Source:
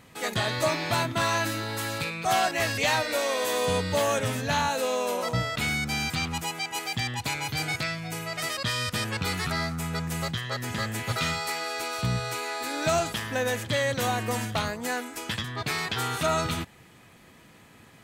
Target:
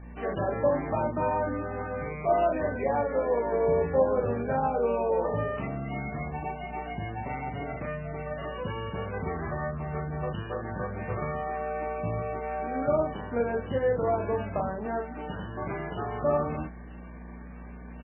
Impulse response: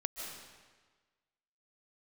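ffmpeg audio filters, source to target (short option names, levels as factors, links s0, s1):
-filter_complex "[0:a]highpass=f=470:p=1,acrossover=split=990[s0][s1];[s1]acompressor=threshold=0.00891:ratio=4[s2];[s0][s2]amix=inputs=2:normalize=0,tiltshelf=f=1300:g=6.5,areverse,acompressor=mode=upward:threshold=0.00501:ratio=2.5,areverse,asetrate=40440,aresample=44100,atempo=1.09051,aeval=exprs='val(0)+0.00794*(sin(2*PI*60*n/s)+sin(2*PI*2*60*n/s)/2+sin(2*PI*3*60*n/s)/3+sin(2*PI*4*60*n/s)/4+sin(2*PI*5*60*n/s)/5)':c=same,aecho=1:1:12|38:0.126|0.708" -ar 12000 -c:a libmp3lame -b:a 8k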